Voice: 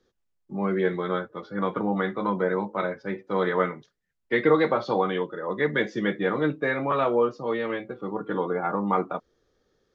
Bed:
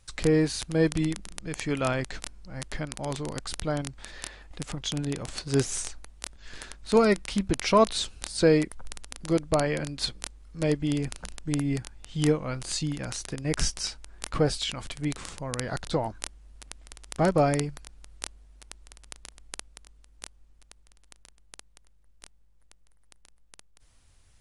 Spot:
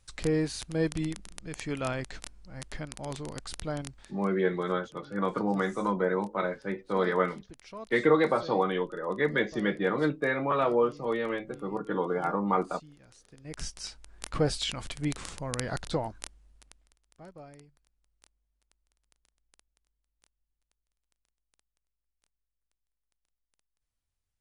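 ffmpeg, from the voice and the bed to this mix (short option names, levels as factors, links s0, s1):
-filter_complex "[0:a]adelay=3600,volume=0.75[s0];[1:a]volume=7.08,afade=t=out:st=3.91:d=0.25:silence=0.125893,afade=t=in:st=13.28:d=1.39:silence=0.0794328,afade=t=out:st=15.68:d=1.3:silence=0.0562341[s1];[s0][s1]amix=inputs=2:normalize=0"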